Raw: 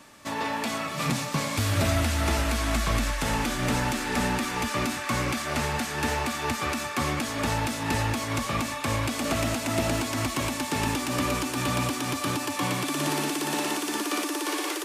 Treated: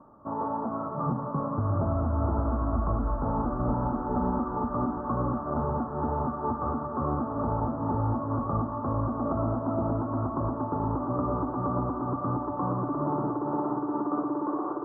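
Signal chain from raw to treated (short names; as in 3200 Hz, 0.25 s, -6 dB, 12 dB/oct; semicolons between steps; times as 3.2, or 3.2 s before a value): steep low-pass 1300 Hz 72 dB/oct; limiter -19.5 dBFS, peak gain reduction 4.5 dB; diffused feedback echo 0.544 s, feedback 48%, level -8.5 dB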